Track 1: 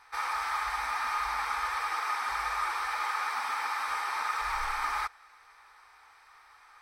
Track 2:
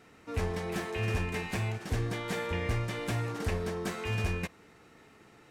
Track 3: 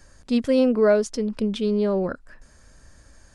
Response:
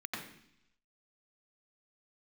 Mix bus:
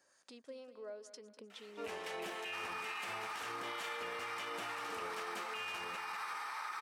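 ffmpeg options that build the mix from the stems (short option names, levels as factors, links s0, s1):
-filter_complex "[0:a]acompressor=threshold=0.02:ratio=6,adelay=2400,volume=0.631[s0];[1:a]equalizer=f=2900:t=o:w=0.41:g=7,adelay=1500,volume=1.06,asplit=2[s1][s2];[s2]volume=0.178[s3];[2:a]acompressor=threshold=0.0282:ratio=5,volume=0.282,asplit=2[s4][s5];[s5]volume=0.168[s6];[s1][s4]amix=inputs=2:normalize=0,acrossover=split=820[s7][s8];[s7]aeval=exprs='val(0)*(1-0.5/2+0.5/2*cos(2*PI*2.2*n/s))':c=same[s9];[s8]aeval=exprs='val(0)*(1-0.5/2-0.5/2*cos(2*PI*2.2*n/s))':c=same[s10];[s9][s10]amix=inputs=2:normalize=0,alimiter=level_in=1.19:limit=0.0631:level=0:latency=1:release=386,volume=0.841,volume=1[s11];[s3][s6]amix=inputs=2:normalize=0,aecho=0:1:198|396|594|792|990|1188:1|0.45|0.202|0.0911|0.041|0.0185[s12];[s0][s11][s12]amix=inputs=3:normalize=0,highpass=500,alimiter=level_in=2.99:limit=0.0631:level=0:latency=1:release=28,volume=0.335"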